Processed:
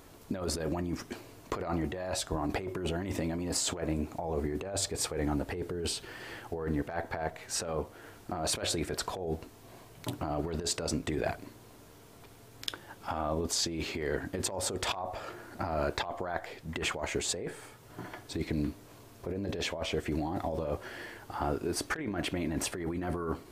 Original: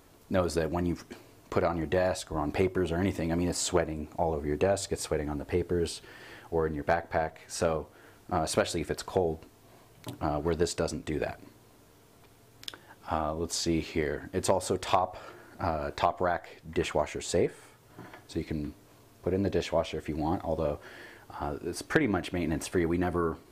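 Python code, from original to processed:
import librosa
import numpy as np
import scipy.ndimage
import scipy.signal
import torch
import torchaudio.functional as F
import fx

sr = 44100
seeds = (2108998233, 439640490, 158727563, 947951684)

y = fx.over_compress(x, sr, threshold_db=-33.0, ratio=-1.0)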